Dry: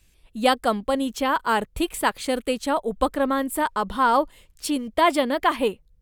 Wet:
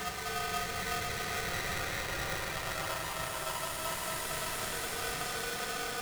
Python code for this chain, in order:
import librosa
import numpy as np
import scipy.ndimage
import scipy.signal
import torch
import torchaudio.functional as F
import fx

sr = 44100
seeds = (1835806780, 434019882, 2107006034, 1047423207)

y = fx.fade_in_head(x, sr, length_s=1.73)
y = 10.0 ** (-32.5 / 20.0) * np.tanh(y / 10.0 ** (-32.5 / 20.0))
y = fx.paulstretch(y, sr, seeds[0], factor=4.4, window_s=1.0, from_s=1.02)
y = y * np.sign(np.sin(2.0 * np.pi * 980.0 * np.arange(len(y)) / sr))